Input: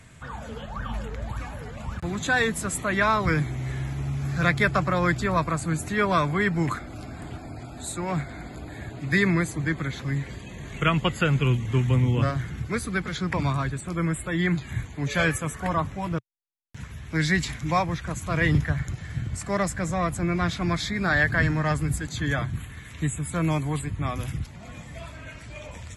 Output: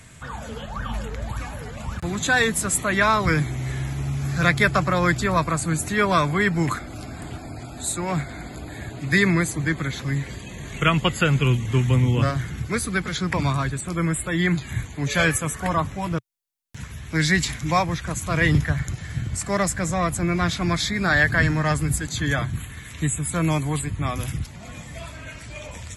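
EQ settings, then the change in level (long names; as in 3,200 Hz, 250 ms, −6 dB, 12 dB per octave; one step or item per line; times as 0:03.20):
high-shelf EQ 4,300 Hz +7 dB
+2.5 dB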